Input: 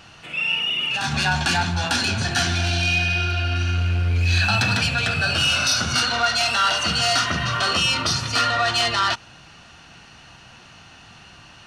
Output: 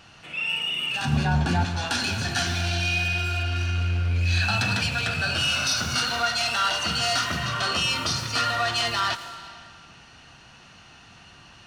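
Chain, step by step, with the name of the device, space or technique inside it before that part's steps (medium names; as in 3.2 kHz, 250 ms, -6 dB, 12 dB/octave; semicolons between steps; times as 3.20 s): 1.05–1.65 s: tilt shelf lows +9 dB, about 910 Hz; saturated reverb return (on a send at -5.5 dB: reverberation RT60 1.6 s, pre-delay 79 ms + saturation -25.5 dBFS, distortion -7 dB); on the sum: trim -4.5 dB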